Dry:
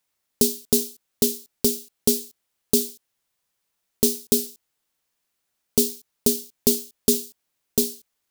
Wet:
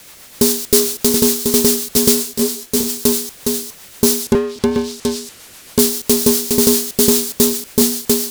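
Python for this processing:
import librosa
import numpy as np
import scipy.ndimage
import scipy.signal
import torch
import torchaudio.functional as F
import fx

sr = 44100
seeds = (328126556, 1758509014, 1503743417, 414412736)

y = fx.echo_multitap(x, sr, ms=(318, 730), db=(-3.0, -10.0))
y = fx.rotary(y, sr, hz=7.5)
y = fx.env_lowpass_down(y, sr, base_hz=490.0, full_db=-18.5, at=(4.22, 5.79))
y = fx.power_curve(y, sr, exponent=0.5)
y = fx.detune_double(y, sr, cents=30, at=(2.22, 2.88), fade=0.02)
y = y * librosa.db_to_amplitude(3.0)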